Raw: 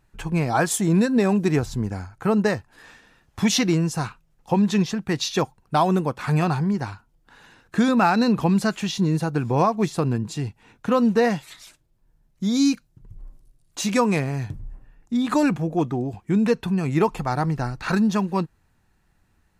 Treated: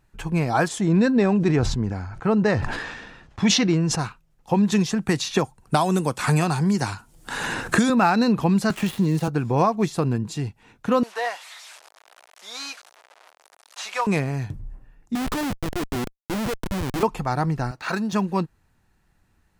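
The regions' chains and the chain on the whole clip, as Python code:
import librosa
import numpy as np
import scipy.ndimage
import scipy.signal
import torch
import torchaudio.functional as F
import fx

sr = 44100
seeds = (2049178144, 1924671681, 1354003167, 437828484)

y = fx.chain(x, sr, fx.air_absorb(metres=89.0),
    fx.sustainer(db_per_s=41.0), at=(0.68, 3.99))
y = fx.chain(y, sr, fx.peak_eq(hz=8700.0, db=10.5, octaves=1.0),
    fx.band_squash(depth_pct=100), at=(4.72, 7.9))
y = fx.chain(y, sr, fx.dead_time(dead_ms=0.099),
    fx.notch(hz=1500.0, q=22.0),
    fx.band_squash(depth_pct=70), at=(8.7, 9.28))
y = fx.chain(y, sr, fx.delta_mod(bps=64000, step_db=-34.5),
    fx.highpass(hz=660.0, slope=24),
    fx.high_shelf(hz=7900.0, db=-10.0), at=(11.03, 14.07))
y = fx.chain(y, sr, fx.cvsd(bps=64000),
    fx.highpass(hz=280.0, slope=12),
    fx.schmitt(flips_db=-26.5), at=(15.15, 17.03))
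y = fx.chain(y, sr, fx.median_filter(points=3),
    fx.highpass(hz=430.0, slope=6),
    fx.peak_eq(hz=640.0, db=4.0, octaves=0.24), at=(17.71, 18.13))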